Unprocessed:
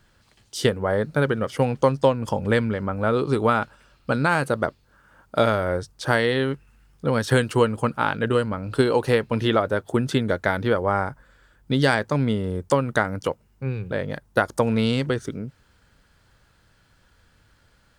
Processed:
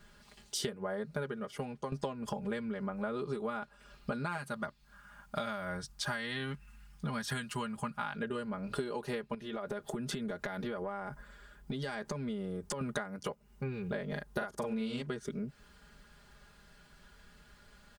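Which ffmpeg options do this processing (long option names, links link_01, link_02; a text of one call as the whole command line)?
ffmpeg -i in.wav -filter_complex "[0:a]asettb=1/sr,asplit=3[link_01][link_02][link_03];[link_01]atrim=end=4.374[link_04];[link_02]atrim=start=4.37:end=8.16,asetpts=PTS-STARTPTS,afade=type=in:duration=0.004:curve=qsin,afade=type=out:start_time=3.786:duration=0.004:curve=qsin,equalizer=frequency=420:width_type=o:width=1.1:gain=-13.5[link_05];[link_03]atrim=start=8.156[link_06];[link_04][link_05]acrossfade=duration=0.004:curve1=hsin:curve2=qsin[link_07];[link_07][link_06]acrossfade=duration=0.004:curve1=qsin:curve2=hsin,asettb=1/sr,asplit=3[link_08][link_09][link_10];[link_08]atrim=end=9.344[link_11];[link_09]atrim=start=9.34:end=12.81,asetpts=PTS-STARTPTS,afade=type=in:duration=0.004:curve=qsin,afade=type=out:start_time=3.466:duration=0.004:curve=qsin,acompressor=threshold=-30dB:ratio=12:attack=3.2:release=140:knee=1:detection=peak[link_12];[link_10]atrim=start=12.806[link_13];[link_11][link_12]acrossfade=duration=0.004:curve1=hsin:curve2=qsin[link_14];[link_14][link_13]acrossfade=duration=0.004:curve1=qsin:curve2=hsin,asettb=1/sr,asplit=3[link_15][link_16][link_17];[link_15]atrim=end=14.084[link_18];[link_16]atrim=start=14.08:end=15.02,asetpts=PTS-STARTPTS,afade=type=in:duration=0.004:curve=qsin,afade=type=out:start_time=0.936:duration=0.004:curve=qsin,asplit=2[link_19][link_20];[link_20]adelay=41,volume=-2.5dB[link_21];[link_19][link_21]amix=inputs=2:normalize=0,atrim=end_sample=41454[link_22];[link_17]atrim=start=15.016[link_23];[link_18][link_22]acrossfade=duration=0.004:curve1=hsin:curve2=qsin[link_24];[link_24][link_23]acrossfade=duration=0.004:curve1=qsin:curve2=hsin,asplit=2[link_25][link_26];[link_25]atrim=end=1.92,asetpts=PTS-STARTPTS,afade=type=out:start_time=1.25:duration=0.67:curve=qua:silence=0.149624[link_27];[link_26]atrim=start=1.92,asetpts=PTS-STARTPTS,afade=type=in:duration=0.004:curve=hsin:silence=0.149624[link_28];[link_27][link_28]concat=n=2:v=0:a=1,aecho=1:1:4.9:0.99,acompressor=threshold=-32dB:ratio=10,volume=-2dB" out.wav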